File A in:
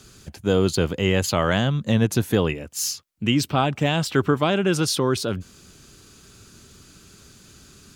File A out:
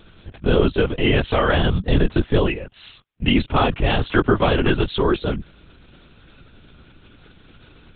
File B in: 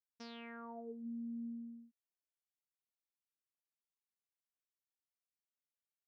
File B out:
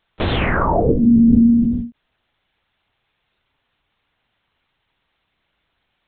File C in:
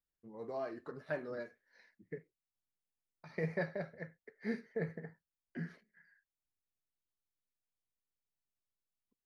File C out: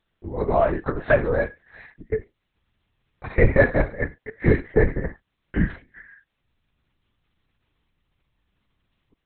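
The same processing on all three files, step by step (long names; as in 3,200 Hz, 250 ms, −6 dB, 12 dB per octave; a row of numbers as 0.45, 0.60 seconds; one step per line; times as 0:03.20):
linear-prediction vocoder at 8 kHz whisper
normalise the peak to −3 dBFS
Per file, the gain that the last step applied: +3.0, +32.0, +20.5 decibels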